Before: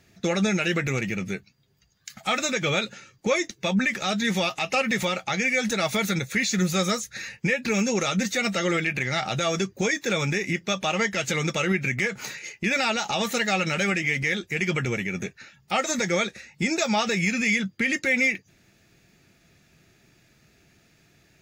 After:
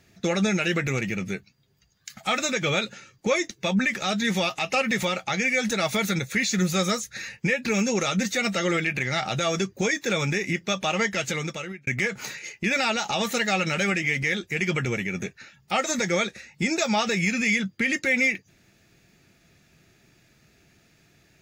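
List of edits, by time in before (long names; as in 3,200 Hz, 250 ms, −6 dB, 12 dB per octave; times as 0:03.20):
0:11.17–0:11.87: fade out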